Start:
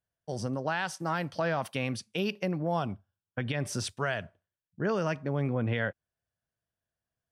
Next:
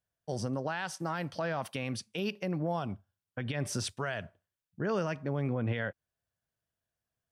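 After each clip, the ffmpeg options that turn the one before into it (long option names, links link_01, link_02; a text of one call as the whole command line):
ffmpeg -i in.wav -af "alimiter=limit=-22.5dB:level=0:latency=1:release=131" out.wav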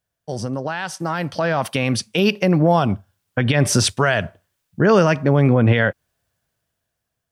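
ffmpeg -i in.wav -af "dynaudnorm=framelen=450:gausssize=7:maxgain=9.5dB,volume=8dB" out.wav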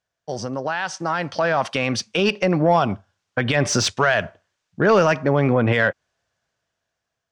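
ffmpeg -i in.wav -filter_complex "[0:a]lowpass=frequency=6500:width_type=q:width=2.1,asplit=2[link_01][link_02];[link_02]highpass=frequency=720:poles=1,volume=10dB,asoftclip=type=tanh:threshold=-2.5dB[link_03];[link_01][link_03]amix=inputs=2:normalize=0,lowpass=frequency=1900:poles=1,volume=-6dB,volume=-1.5dB" out.wav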